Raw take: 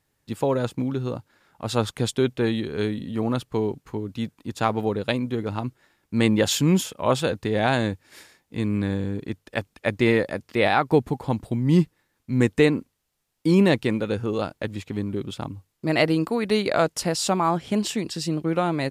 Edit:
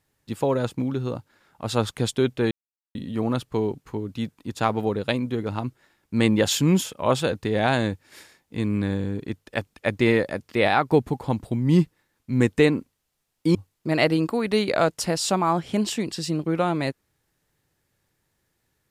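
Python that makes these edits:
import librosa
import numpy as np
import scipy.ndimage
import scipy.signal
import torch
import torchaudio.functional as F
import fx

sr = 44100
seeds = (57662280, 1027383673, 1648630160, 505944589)

y = fx.edit(x, sr, fx.silence(start_s=2.51, length_s=0.44),
    fx.cut(start_s=13.55, length_s=1.98), tone=tone)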